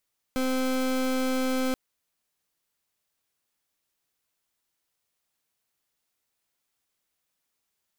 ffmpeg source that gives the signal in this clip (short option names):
-f lavfi -i "aevalsrc='0.0501*(2*lt(mod(259*t,1),0.28)-1)':d=1.38:s=44100"